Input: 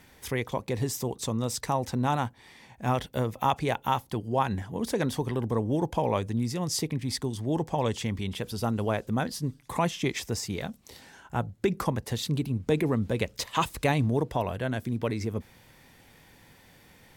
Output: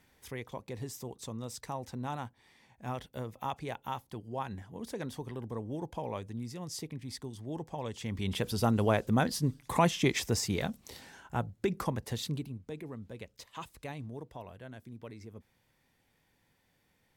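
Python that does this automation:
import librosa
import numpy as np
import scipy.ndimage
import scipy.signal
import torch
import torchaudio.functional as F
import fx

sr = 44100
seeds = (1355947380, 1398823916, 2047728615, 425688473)

y = fx.gain(x, sr, db=fx.line((7.93, -11.0), (8.33, 1.0), (10.82, 1.0), (11.56, -5.0), (12.26, -5.0), (12.69, -17.0)))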